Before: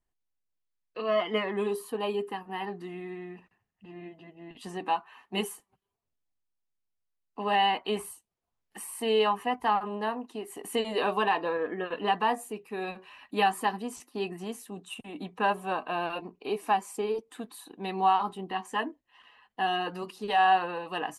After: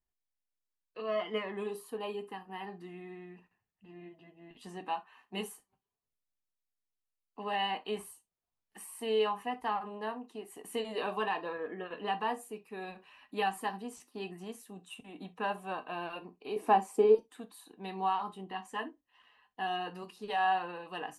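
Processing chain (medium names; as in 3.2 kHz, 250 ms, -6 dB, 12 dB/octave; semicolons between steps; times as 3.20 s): 16.56–17.15 s: peaking EQ 380 Hz +13 dB 2.8 oct; gated-style reverb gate 90 ms falling, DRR 9.5 dB; trim -7.5 dB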